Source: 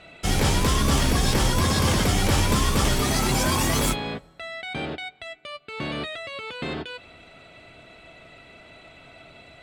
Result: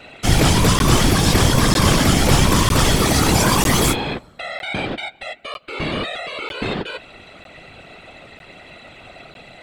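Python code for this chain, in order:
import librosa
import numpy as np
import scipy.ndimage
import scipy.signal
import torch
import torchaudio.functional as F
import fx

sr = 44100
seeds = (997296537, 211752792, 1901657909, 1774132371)

y = fx.whisperise(x, sr, seeds[0])
y = fx.buffer_crackle(y, sr, first_s=0.79, period_s=0.95, block=512, kind='zero')
y = F.gain(torch.from_numpy(y), 6.5).numpy()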